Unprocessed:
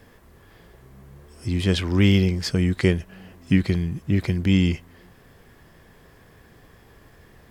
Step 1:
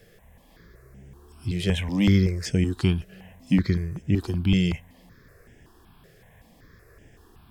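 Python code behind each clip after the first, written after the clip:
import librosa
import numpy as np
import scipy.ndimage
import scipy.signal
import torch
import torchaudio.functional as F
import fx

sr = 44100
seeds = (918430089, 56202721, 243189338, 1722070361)

y = fx.phaser_held(x, sr, hz=5.3, low_hz=260.0, high_hz=4200.0)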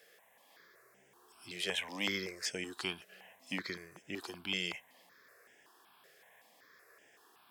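y = scipy.signal.sosfilt(scipy.signal.butter(2, 670.0, 'highpass', fs=sr, output='sos'), x)
y = F.gain(torch.from_numpy(y), -3.0).numpy()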